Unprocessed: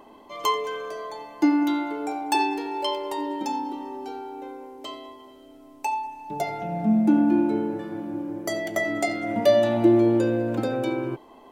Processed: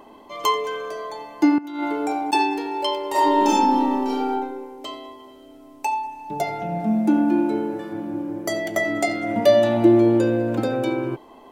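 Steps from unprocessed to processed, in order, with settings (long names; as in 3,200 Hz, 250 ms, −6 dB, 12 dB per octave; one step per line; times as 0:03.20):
0:01.58–0:02.33: compressor whose output falls as the input rises −28 dBFS, ratio −0.5
0:03.10–0:04.30: thrown reverb, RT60 1 s, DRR −9 dB
0:06.80–0:07.93: bass and treble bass −6 dB, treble +3 dB
level +3 dB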